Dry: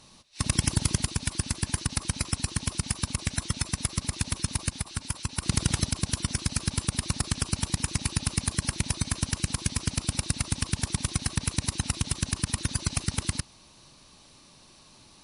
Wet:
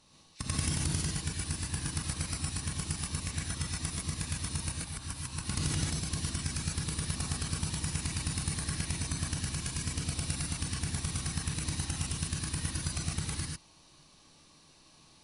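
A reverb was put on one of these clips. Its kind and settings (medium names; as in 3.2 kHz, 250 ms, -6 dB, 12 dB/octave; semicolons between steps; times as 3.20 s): gated-style reverb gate 170 ms rising, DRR -3.5 dB; trim -10 dB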